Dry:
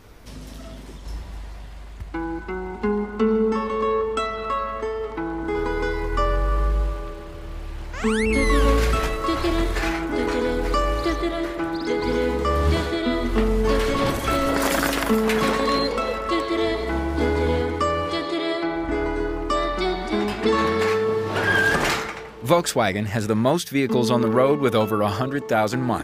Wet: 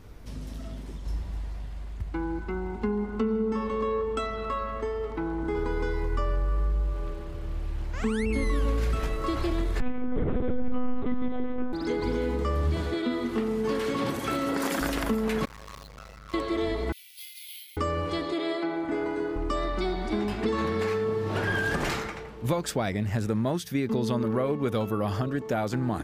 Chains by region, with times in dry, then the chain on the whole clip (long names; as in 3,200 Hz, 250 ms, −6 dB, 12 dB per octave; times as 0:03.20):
0:09.80–0:11.73: spectral tilt −3 dB per octave + one-pitch LPC vocoder at 8 kHz 250 Hz
0:12.94–0:14.81: high-pass filter 170 Hz + notch filter 620 Hz, Q 5.8
0:15.45–0:16.34: running median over 15 samples + guitar amp tone stack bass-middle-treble 10-0-10 + saturating transformer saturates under 1,400 Hz
0:16.92–0:17.77: Butterworth high-pass 2,500 Hz 48 dB per octave + bad sample-rate conversion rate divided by 3×, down filtered, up zero stuff
0:18.32–0:19.36: high-pass filter 210 Hz + notch filter 5,600 Hz, Q 11
whole clip: low-shelf EQ 310 Hz +8.5 dB; downward compressor 3 to 1, threshold −18 dBFS; level −6.5 dB